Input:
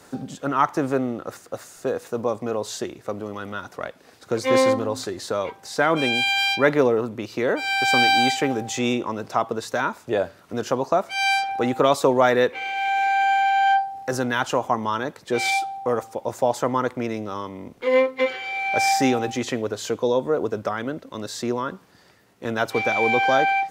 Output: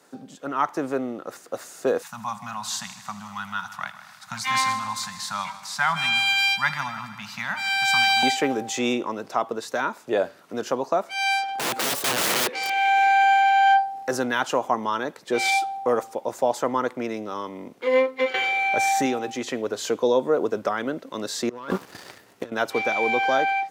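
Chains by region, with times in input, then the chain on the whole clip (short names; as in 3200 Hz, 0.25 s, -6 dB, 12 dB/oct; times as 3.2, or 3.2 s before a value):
2.02–8.23 elliptic band-stop 190–850 Hz, stop band 60 dB + multi-head echo 78 ms, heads first and second, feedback 61%, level -17 dB
11.48–12.7 self-modulated delay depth 0.76 ms + wrapped overs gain 21 dB
18.34–19.06 Butterworth band-stop 5000 Hz, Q 5.9 + bell 77 Hz +8.5 dB 1.5 oct + fast leveller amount 70%
21.49–22.52 resonant low shelf 120 Hz +7.5 dB, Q 1.5 + sample leveller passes 2 + negative-ratio compressor -30 dBFS, ratio -0.5
whole clip: AGC; HPF 200 Hz 12 dB/oct; gain -7.5 dB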